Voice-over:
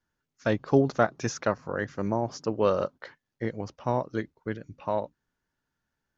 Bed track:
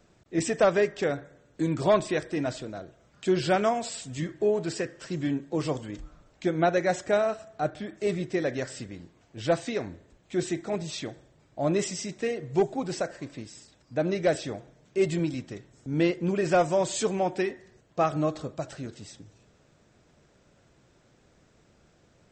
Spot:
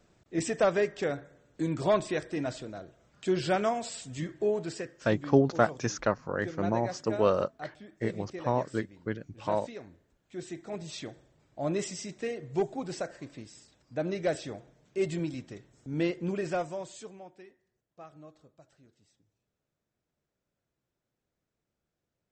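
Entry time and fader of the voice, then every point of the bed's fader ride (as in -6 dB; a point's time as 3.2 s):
4.60 s, -1.0 dB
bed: 4.53 s -3.5 dB
5.36 s -13 dB
10.29 s -13 dB
10.97 s -5 dB
16.35 s -5 dB
17.37 s -24 dB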